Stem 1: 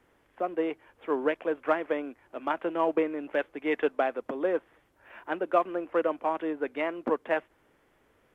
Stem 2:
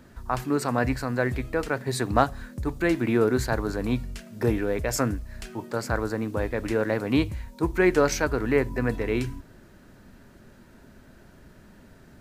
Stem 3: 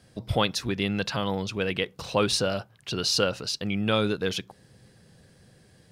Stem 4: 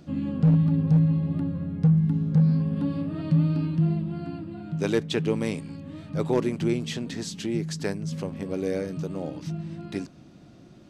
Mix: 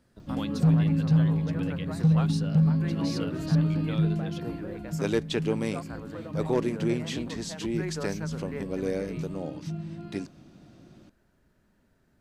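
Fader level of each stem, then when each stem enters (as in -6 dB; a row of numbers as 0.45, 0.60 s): -16.5, -16.0, -15.0, -2.0 dB; 0.20, 0.00, 0.00, 0.20 s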